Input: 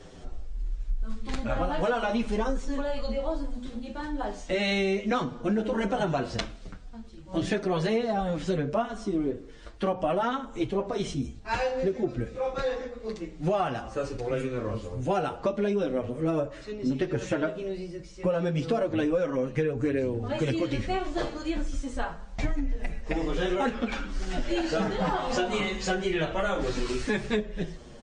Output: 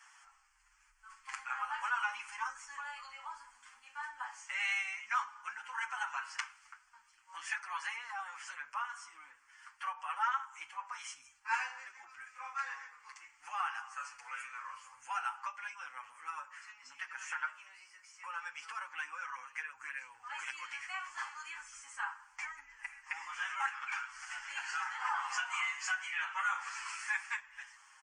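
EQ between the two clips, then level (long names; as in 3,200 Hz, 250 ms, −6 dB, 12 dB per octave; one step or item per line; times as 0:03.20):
elliptic high-pass filter 840 Hz, stop band 50 dB
parametric band 1,800 Hz −2.5 dB 0.68 octaves
phaser with its sweep stopped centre 1,600 Hz, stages 4
+2.0 dB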